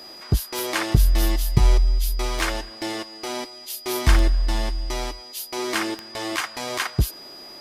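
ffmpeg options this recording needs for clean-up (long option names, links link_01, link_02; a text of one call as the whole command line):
ffmpeg -i in.wav -af "adeclick=threshold=4,bandreject=frequency=4900:width=30" out.wav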